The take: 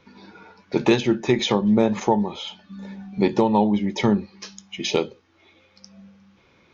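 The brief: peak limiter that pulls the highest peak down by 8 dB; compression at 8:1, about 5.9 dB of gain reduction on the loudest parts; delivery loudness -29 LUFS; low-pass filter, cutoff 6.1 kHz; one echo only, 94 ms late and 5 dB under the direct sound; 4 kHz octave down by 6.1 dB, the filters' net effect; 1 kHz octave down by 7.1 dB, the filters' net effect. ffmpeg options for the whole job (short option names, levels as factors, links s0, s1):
-af "lowpass=6100,equalizer=f=1000:t=o:g=-8.5,equalizer=f=4000:t=o:g=-6.5,acompressor=threshold=0.1:ratio=8,alimiter=limit=0.126:level=0:latency=1,aecho=1:1:94:0.562,volume=0.944"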